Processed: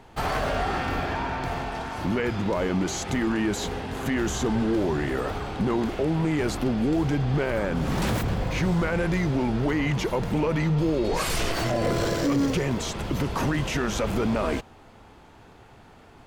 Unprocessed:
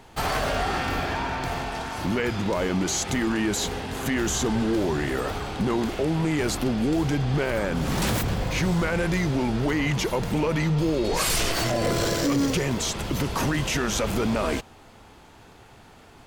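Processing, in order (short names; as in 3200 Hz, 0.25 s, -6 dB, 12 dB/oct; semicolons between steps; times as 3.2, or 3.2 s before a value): high shelf 3300 Hz -8 dB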